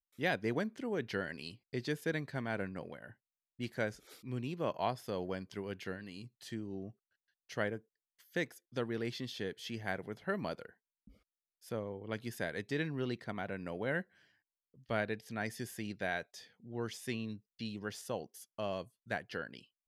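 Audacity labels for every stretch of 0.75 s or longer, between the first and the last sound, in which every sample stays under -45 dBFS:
10.690000	11.670000	silence
14.020000	14.900000	silence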